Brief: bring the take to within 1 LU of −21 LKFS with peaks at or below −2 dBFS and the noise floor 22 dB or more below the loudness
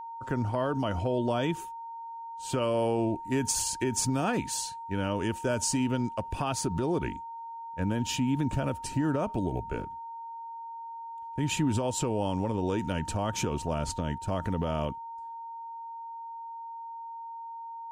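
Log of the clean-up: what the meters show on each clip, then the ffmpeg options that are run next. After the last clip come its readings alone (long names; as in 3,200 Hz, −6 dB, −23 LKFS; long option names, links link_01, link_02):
interfering tone 920 Hz; level of the tone −38 dBFS; integrated loudness −31.5 LKFS; sample peak −15.5 dBFS; target loudness −21.0 LKFS
→ -af "bandreject=frequency=920:width=30"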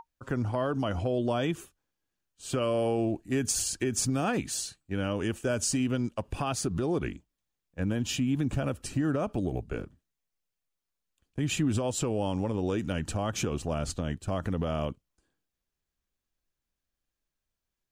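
interfering tone none found; integrated loudness −30.5 LKFS; sample peak −16.5 dBFS; target loudness −21.0 LKFS
→ -af "volume=9.5dB"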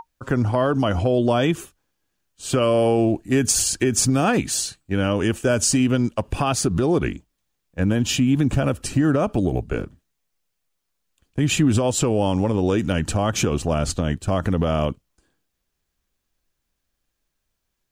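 integrated loudness −21.0 LKFS; sample peak −7.0 dBFS; background noise floor −77 dBFS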